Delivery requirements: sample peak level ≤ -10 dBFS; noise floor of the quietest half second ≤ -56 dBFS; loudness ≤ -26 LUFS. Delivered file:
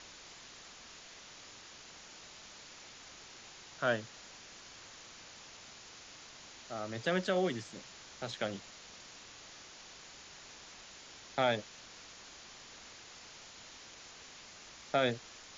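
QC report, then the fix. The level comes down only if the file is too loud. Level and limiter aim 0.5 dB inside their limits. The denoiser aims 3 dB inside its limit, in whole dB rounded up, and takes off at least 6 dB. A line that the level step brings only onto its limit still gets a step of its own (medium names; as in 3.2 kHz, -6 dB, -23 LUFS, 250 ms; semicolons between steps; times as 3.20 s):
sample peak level -17.5 dBFS: pass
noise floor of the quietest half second -53 dBFS: fail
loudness -41.0 LUFS: pass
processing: noise reduction 6 dB, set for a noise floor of -53 dBFS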